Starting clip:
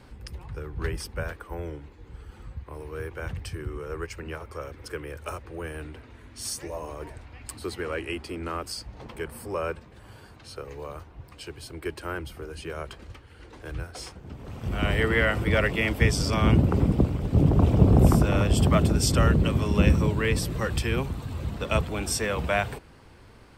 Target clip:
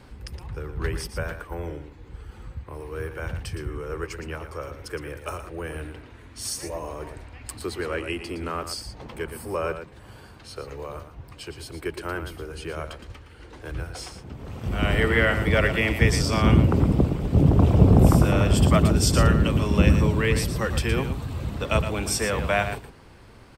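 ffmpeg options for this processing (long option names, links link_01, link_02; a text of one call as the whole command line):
ffmpeg -i in.wav -af "aecho=1:1:115:0.335,volume=2dB" out.wav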